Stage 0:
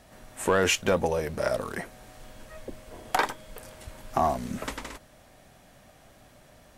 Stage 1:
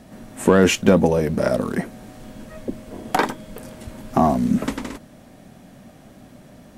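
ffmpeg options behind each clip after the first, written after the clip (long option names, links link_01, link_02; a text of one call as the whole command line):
ffmpeg -i in.wav -af "equalizer=frequency=220:width_type=o:width=1.7:gain=14,volume=3dB" out.wav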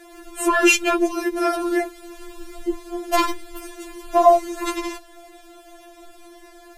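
ffmpeg -i in.wav -filter_complex "[0:a]acrossover=split=570|2600[link_01][link_02][link_03];[link_01]alimiter=limit=-14dB:level=0:latency=1[link_04];[link_04][link_02][link_03]amix=inputs=3:normalize=0,afftfilt=real='re*4*eq(mod(b,16),0)':imag='im*4*eq(mod(b,16),0)':win_size=2048:overlap=0.75,volume=7dB" out.wav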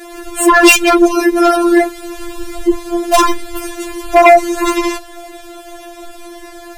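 ffmpeg -i in.wav -af "afftfilt=real='hypot(re,im)*cos(PI*b)':imag='0':win_size=512:overlap=0.75,aeval=exprs='1*sin(PI/2*3.16*val(0)/1)':channel_layout=same,volume=-1dB" out.wav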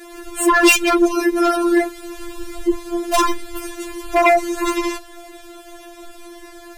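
ffmpeg -i in.wav -af "asuperstop=centerf=790:order=4:qfactor=3.7,volume=-5.5dB" out.wav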